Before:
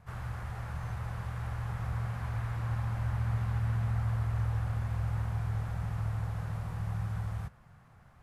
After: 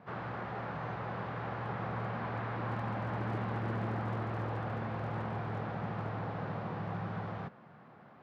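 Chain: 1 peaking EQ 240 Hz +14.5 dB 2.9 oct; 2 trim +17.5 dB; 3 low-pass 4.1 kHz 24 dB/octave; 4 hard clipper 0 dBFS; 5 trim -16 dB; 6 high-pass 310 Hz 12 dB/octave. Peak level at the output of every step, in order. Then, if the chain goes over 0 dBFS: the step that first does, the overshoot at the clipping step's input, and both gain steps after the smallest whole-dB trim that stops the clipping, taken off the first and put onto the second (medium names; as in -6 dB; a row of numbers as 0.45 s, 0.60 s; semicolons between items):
-13.5 dBFS, +4.0 dBFS, +4.0 dBFS, 0.0 dBFS, -16.0 dBFS, -24.5 dBFS; step 2, 4.0 dB; step 2 +13.5 dB, step 5 -12 dB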